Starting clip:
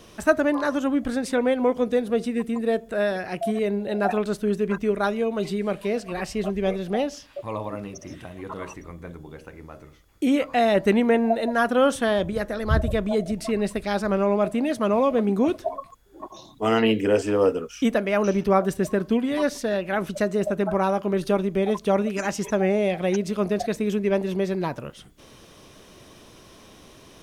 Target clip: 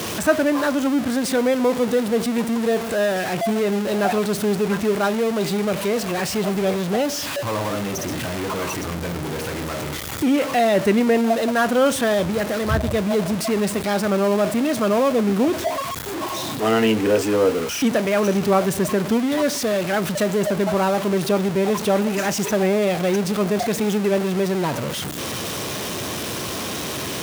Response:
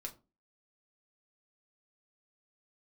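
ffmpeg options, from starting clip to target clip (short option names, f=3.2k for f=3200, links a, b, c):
-af "aeval=exprs='val(0)+0.5*0.0794*sgn(val(0))':c=same,highpass=f=77:w=0.5412,highpass=f=77:w=1.3066"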